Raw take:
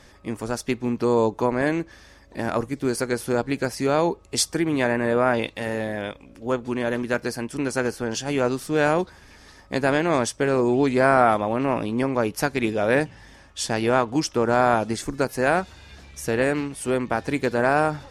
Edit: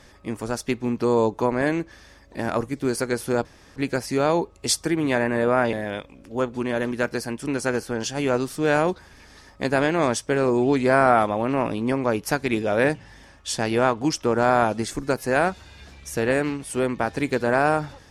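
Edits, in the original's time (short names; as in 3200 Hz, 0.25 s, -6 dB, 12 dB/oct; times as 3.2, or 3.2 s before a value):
3.45 insert room tone 0.31 s
5.42–5.84 cut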